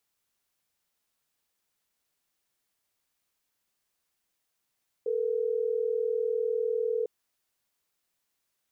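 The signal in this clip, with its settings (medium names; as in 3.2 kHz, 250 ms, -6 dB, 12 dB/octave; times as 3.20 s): call progress tone ringback tone, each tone -28.5 dBFS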